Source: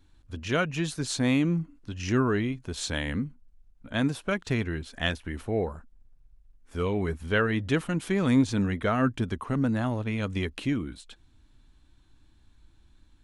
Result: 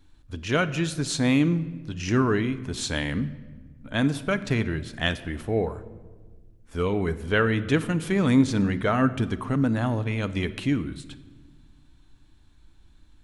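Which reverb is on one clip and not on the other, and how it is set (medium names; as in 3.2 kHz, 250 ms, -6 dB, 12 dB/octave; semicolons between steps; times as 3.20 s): simulated room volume 1300 m³, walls mixed, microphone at 0.41 m; trim +2.5 dB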